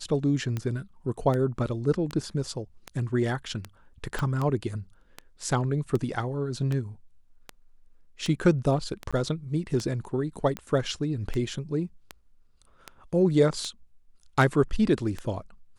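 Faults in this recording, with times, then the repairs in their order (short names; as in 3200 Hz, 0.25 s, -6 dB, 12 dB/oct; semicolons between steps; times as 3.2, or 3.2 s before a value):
tick 78 rpm -18 dBFS
4.19 pop -16 dBFS
9.11–9.13 gap 16 ms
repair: de-click; interpolate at 9.11, 16 ms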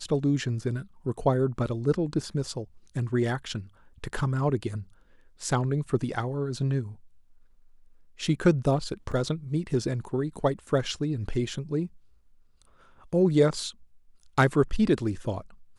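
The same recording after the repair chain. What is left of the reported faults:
4.19 pop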